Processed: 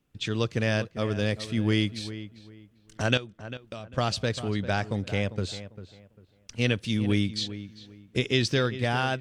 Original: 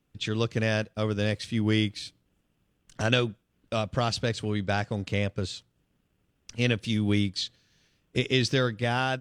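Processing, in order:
0:03.17–0:03.98: downward compressor 5 to 1, threshold −38 dBFS, peak gain reduction 14.5 dB
feedback echo with a low-pass in the loop 397 ms, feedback 26%, low-pass 2,400 Hz, level −13 dB

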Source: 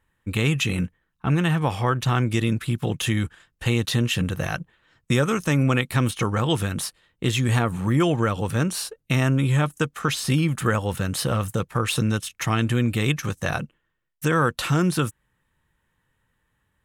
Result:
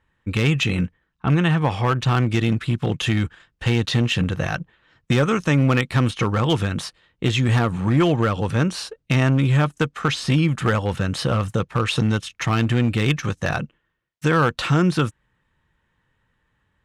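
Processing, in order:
low-pass filter 5,300 Hz 12 dB per octave
asymmetric clip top −16 dBFS
level +3 dB

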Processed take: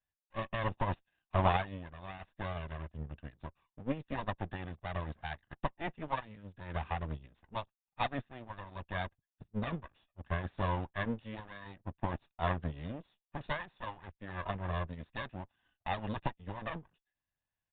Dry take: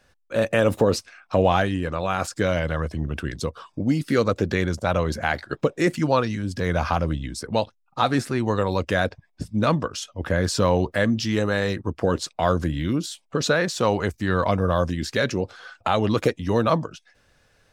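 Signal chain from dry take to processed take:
lower of the sound and its delayed copy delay 1.1 ms
downsampling to 8,000 Hz
expander for the loud parts 2.5 to 1, over −35 dBFS
level −5.5 dB

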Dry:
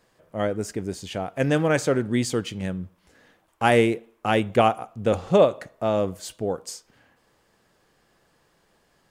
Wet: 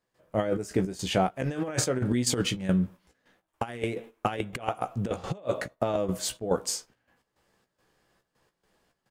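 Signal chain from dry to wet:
gate pattern ".xxx.x.xx" 106 BPM −12 dB
noise gate −46 dBFS, range −11 dB
double-tracking delay 16 ms −7 dB
compressor whose output falls as the input rises −26 dBFS, ratio −0.5

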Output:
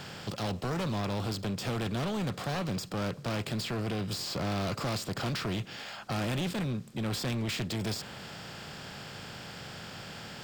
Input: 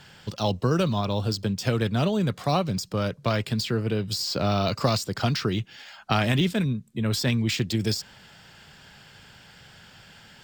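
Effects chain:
compressor on every frequency bin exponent 0.6
dynamic equaliser 5,400 Hz, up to −4 dB, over −41 dBFS, Q 2.4
gain into a clipping stage and back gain 21.5 dB
level −7.5 dB

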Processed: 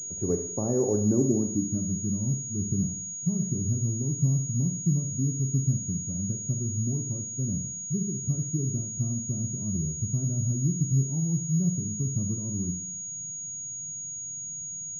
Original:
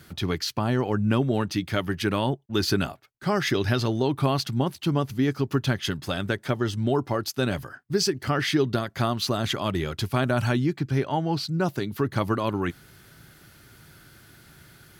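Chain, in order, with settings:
low-pass filter sweep 490 Hz → 170 Hz, 0:00.85–0:01.96
four-comb reverb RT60 0.67 s, combs from 30 ms, DRR 5.5 dB
switching amplifier with a slow clock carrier 6,700 Hz
level −5 dB

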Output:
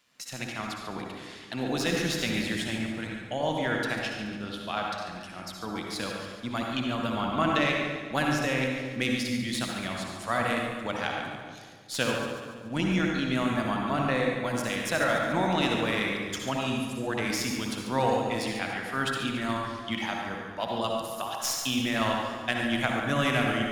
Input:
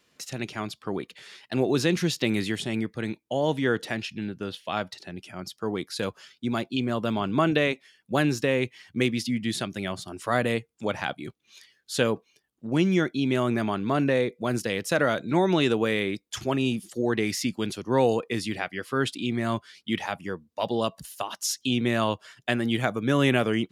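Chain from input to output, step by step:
stylus tracing distortion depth 0.028 ms
low-shelf EQ 180 Hz −7.5 dB
amplitude modulation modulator 130 Hz, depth 25%
parametric band 400 Hz −10 dB 0.74 octaves
echo with a time of its own for lows and highs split 580 Hz, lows 235 ms, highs 142 ms, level −10 dB
convolution reverb RT60 1.2 s, pre-delay 53 ms, DRR 0.5 dB

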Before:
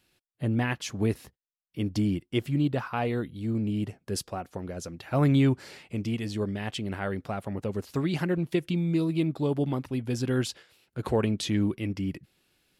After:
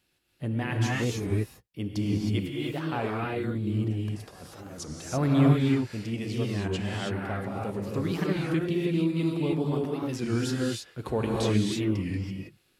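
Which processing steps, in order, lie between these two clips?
0:02.22–0:02.88: low-shelf EQ 280 Hz −11 dB
0:03.88–0:04.94: compressor whose output falls as the input rises −40 dBFS, ratio −0.5
0:09.52–0:10.04: high-pass filter 170 Hz
reverb whose tail is shaped and stops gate 340 ms rising, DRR −3 dB
wow of a warped record 33 1/3 rpm, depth 160 cents
level −3.5 dB

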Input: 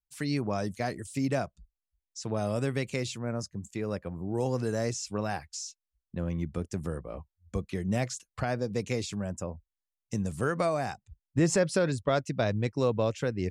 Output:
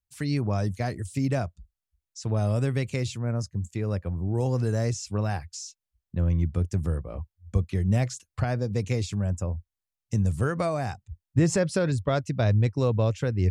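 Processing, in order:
parametric band 88 Hz +13.5 dB 1.2 octaves

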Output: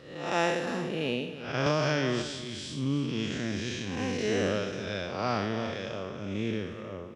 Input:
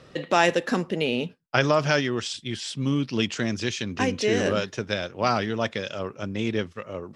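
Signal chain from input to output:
spectrum smeared in time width 195 ms
repeating echo 315 ms, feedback 28%, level −13 dB
0:01.66–0:02.22: multiband upward and downward compressor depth 100%
level −2.5 dB

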